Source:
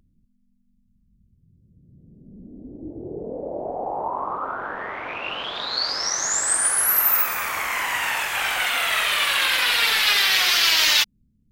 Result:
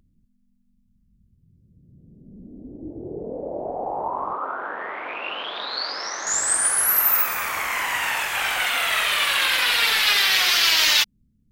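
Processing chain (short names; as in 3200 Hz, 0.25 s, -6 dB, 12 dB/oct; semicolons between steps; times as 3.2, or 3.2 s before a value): 4.33–6.27 three-band isolator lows -20 dB, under 220 Hz, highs -23 dB, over 4800 Hz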